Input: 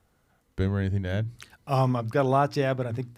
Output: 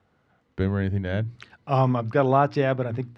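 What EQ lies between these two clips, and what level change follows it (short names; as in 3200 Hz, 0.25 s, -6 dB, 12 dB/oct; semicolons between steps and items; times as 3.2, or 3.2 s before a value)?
HPF 91 Hz; LPF 3400 Hz 12 dB/oct; +3.0 dB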